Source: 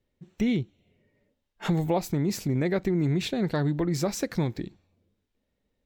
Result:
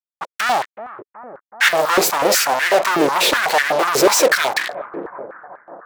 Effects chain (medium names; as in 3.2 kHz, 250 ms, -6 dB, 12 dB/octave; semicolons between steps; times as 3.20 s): fuzz box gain 49 dB, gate -49 dBFS; bucket-brigade echo 374 ms, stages 4096, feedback 72%, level -15.5 dB; step-sequenced high-pass 8.1 Hz 420–1800 Hz; trim -1 dB